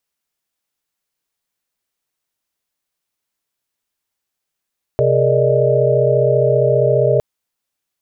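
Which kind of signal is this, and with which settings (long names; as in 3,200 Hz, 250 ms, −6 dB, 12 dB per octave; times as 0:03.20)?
held notes C3/G#4/A#4/D5/D#5 sine, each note −17.5 dBFS 2.21 s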